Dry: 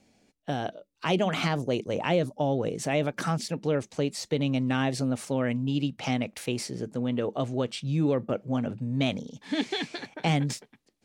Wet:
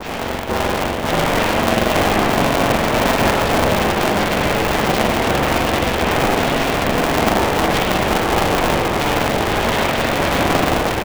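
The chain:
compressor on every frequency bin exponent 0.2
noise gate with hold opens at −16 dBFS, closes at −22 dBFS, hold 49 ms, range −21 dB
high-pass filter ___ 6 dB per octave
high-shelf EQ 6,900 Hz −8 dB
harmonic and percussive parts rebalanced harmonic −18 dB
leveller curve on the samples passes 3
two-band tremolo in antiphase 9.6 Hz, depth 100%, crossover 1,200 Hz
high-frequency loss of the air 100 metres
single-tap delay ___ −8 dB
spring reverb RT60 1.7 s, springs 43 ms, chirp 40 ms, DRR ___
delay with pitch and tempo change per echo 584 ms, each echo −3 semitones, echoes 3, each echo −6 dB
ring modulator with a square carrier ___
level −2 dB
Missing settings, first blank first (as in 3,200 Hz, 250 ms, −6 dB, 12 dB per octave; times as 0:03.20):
430 Hz, 638 ms, −5 dB, 210 Hz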